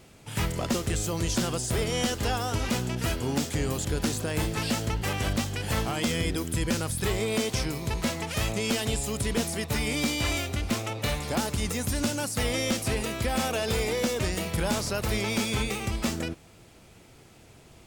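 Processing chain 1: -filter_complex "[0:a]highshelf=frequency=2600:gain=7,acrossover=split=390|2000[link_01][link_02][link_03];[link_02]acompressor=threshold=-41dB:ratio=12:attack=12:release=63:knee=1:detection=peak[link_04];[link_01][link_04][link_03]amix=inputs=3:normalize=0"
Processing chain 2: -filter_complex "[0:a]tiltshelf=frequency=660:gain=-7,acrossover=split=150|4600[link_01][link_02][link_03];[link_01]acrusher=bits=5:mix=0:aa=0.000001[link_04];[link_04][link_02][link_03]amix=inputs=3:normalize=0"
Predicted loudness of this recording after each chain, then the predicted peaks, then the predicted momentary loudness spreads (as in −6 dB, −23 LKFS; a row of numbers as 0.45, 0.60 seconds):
−26.5, −25.5 LKFS; −11.5, −7.5 dBFS; 4, 4 LU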